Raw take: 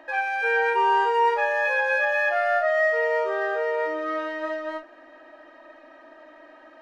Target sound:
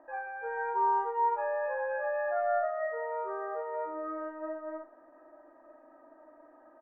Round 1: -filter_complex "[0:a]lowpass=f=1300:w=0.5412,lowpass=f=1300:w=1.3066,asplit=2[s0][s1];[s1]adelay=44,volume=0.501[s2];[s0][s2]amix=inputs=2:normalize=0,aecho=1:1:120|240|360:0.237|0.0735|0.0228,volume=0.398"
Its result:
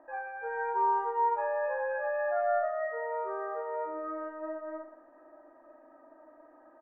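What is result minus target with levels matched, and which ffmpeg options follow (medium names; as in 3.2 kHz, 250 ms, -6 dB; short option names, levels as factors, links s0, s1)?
echo-to-direct +12 dB
-filter_complex "[0:a]lowpass=f=1300:w=0.5412,lowpass=f=1300:w=1.3066,asplit=2[s0][s1];[s1]adelay=44,volume=0.501[s2];[s0][s2]amix=inputs=2:normalize=0,aecho=1:1:120|240:0.0596|0.0185,volume=0.398"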